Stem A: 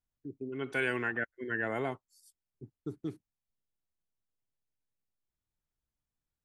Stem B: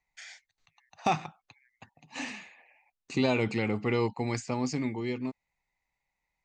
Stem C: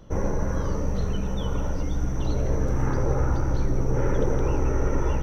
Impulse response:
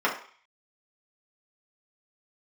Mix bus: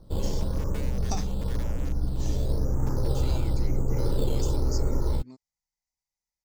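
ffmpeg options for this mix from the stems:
-filter_complex "[0:a]highshelf=f=2.9k:g=11.5,acompressor=threshold=-37dB:ratio=5,acrusher=bits=3:dc=4:mix=0:aa=0.000001,volume=-6.5dB,asplit=2[a][b];[1:a]highshelf=f=3.9k:t=q:w=3:g=11,adelay=50,volume=-8dB[c];[2:a]lowpass=1.1k,acrusher=samples=9:mix=1:aa=0.000001:lfo=1:lforange=5.4:lforate=0.98,volume=-6dB[d];[b]apad=whole_len=286549[e];[c][e]sidechaingate=range=-7dB:threshold=-52dB:ratio=16:detection=peak[f];[a][f][d]amix=inputs=3:normalize=0,lowshelf=f=160:g=5.5"

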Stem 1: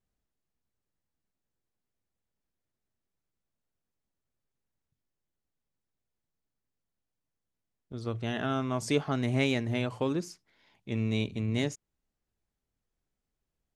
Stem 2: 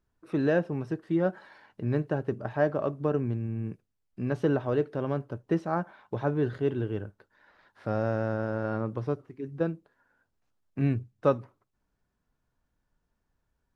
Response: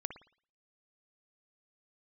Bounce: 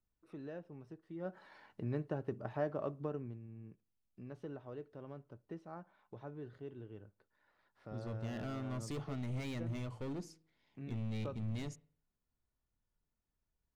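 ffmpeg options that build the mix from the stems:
-filter_complex "[0:a]volume=30.5dB,asoftclip=hard,volume=-30.5dB,lowshelf=f=220:g=9.5,bandreject=f=159.5:t=h:w=4,bandreject=f=319:t=h:w=4,bandreject=f=478.5:t=h:w=4,volume=-13.5dB,asplit=2[a][b];[b]volume=-11dB[c];[1:a]acompressor=threshold=-41dB:ratio=1.5,volume=-4.5dB,afade=t=in:st=1.15:d=0.25:silence=0.281838,afade=t=out:st=2.89:d=0.53:silence=0.316228,asplit=2[d][e];[e]volume=-20dB[f];[2:a]atrim=start_sample=2205[g];[c][f]amix=inputs=2:normalize=0[h];[h][g]afir=irnorm=-1:irlink=0[i];[a][d][i]amix=inputs=3:normalize=0,bandreject=f=1.6k:w=15"

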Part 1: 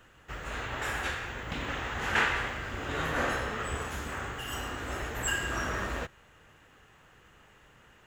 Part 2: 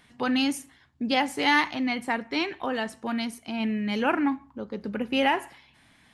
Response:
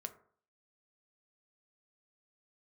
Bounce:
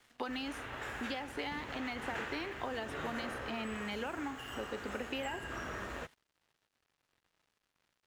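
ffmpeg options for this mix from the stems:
-filter_complex "[0:a]volume=-6dB,asplit=2[a][b];[b]volume=-15dB[c];[1:a]highpass=300,acompressor=threshold=-29dB:ratio=6,volume=-1.5dB,asplit=2[d][e];[e]volume=-13dB[f];[2:a]atrim=start_sample=2205[g];[c][f]amix=inputs=2:normalize=0[h];[h][g]afir=irnorm=-1:irlink=0[i];[a][d][i]amix=inputs=3:normalize=0,lowshelf=f=91:g=-8.5,acrossover=split=610|4200[j][k][l];[j]acompressor=threshold=-39dB:ratio=4[m];[k]acompressor=threshold=-40dB:ratio=4[n];[l]acompressor=threshold=-59dB:ratio=4[o];[m][n][o]amix=inputs=3:normalize=0,aeval=exprs='sgn(val(0))*max(abs(val(0))-0.00106,0)':c=same"

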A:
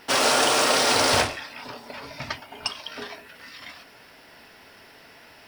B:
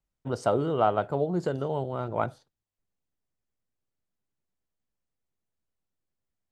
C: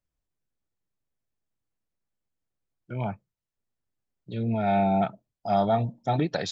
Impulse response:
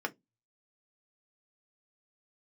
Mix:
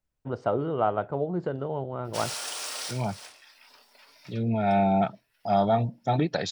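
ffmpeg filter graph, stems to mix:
-filter_complex "[0:a]highpass=f=830:p=1,highshelf=f=3.7k:g=10.5,adelay=2050,volume=-18dB[a];[1:a]lowpass=2.6k,volume=-1.5dB[b];[2:a]volume=0.5dB,asplit=2[c][d];[d]apad=whole_len=331982[e];[a][e]sidechaincompress=threshold=-39dB:ratio=8:attack=12:release=439[f];[f][b][c]amix=inputs=3:normalize=0"

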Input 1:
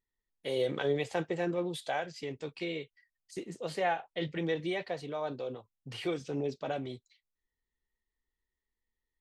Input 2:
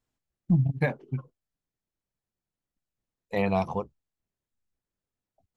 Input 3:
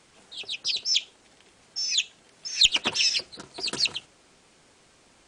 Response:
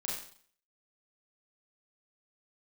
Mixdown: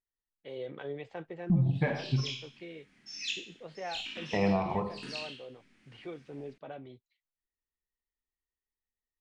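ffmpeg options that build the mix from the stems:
-filter_complex "[0:a]lowpass=2.9k,volume=-9dB,asplit=2[a][b];[1:a]lowpass=2.7k,bandreject=f=520:w=12,adelay=1000,volume=-0.5dB,asplit=2[c][d];[d]volume=-4dB[e];[2:a]equalizer=f=250:t=o:w=1:g=11,equalizer=f=500:t=o:w=1:g=-12,equalizer=f=1k:t=o:w=1:g=-7,equalizer=f=2k:t=o:w=1:g=8,equalizer=f=4k:t=o:w=1:g=-4,equalizer=f=8k:t=o:w=1:g=-11,dynaudnorm=f=370:g=3:m=15dB,flanger=delay=18.5:depth=5.9:speed=1.4,adelay=1300,volume=-14dB,asplit=2[f][g];[g]volume=-8dB[h];[b]apad=whole_len=290165[i];[f][i]sidechaincompress=threshold=-54dB:ratio=8:attack=16:release=1150[j];[3:a]atrim=start_sample=2205[k];[e][h]amix=inputs=2:normalize=0[l];[l][k]afir=irnorm=-1:irlink=0[m];[a][c][j][m]amix=inputs=4:normalize=0,alimiter=limit=-18.5dB:level=0:latency=1:release=314"

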